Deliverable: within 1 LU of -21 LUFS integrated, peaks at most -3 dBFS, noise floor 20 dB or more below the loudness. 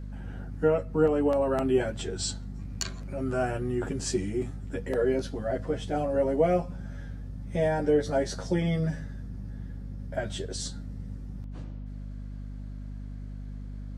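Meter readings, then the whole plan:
hum 50 Hz; highest harmonic 250 Hz; hum level -36 dBFS; loudness -29.0 LUFS; peak level -12.0 dBFS; loudness target -21.0 LUFS
-> hum notches 50/100/150/200/250 Hz; trim +8 dB

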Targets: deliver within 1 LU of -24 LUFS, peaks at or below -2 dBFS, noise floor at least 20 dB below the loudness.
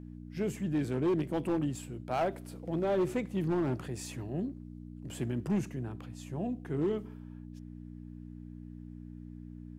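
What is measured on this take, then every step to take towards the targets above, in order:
clipped samples 1.5%; clipping level -24.5 dBFS; hum 60 Hz; highest harmonic 300 Hz; hum level -43 dBFS; loudness -34.0 LUFS; peak level -24.5 dBFS; loudness target -24.0 LUFS
-> clip repair -24.5 dBFS; de-hum 60 Hz, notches 5; trim +10 dB

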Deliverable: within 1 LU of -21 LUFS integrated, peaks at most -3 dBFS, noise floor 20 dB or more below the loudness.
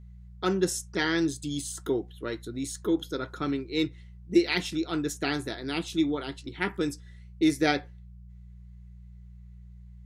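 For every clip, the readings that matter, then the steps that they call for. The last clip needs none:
hum 60 Hz; highest harmonic 180 Hz; hum level -44 dBFS; loudness -29.5 LUFS; peak level -10.5 dBFS; loudness target -21.0 LUFS
-> de-hum 60 Hz, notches 3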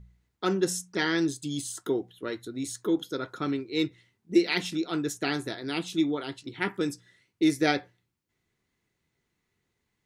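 hum not found; loudness -29.5 LUFS; peak level -10.0 dBFS; loudness target -21.0 LUFS
-> trim +8.5 dB; peak limiter -3 dBFS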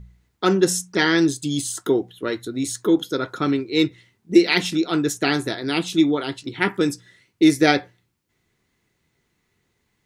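loudness -21.0 LUFS; peak level -3.0 dBFS; noise floor -71 dBFS

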